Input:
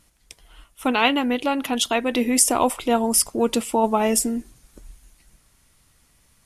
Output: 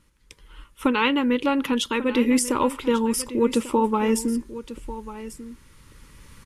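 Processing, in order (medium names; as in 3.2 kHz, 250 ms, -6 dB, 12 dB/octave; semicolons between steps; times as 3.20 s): recorder AGC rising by 6.8 dB/s; Butterworth band-stop 700 Hz, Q 2.4; treble shelf 3.9 kHz -11 dB; delay 1143 ms -14.5 dB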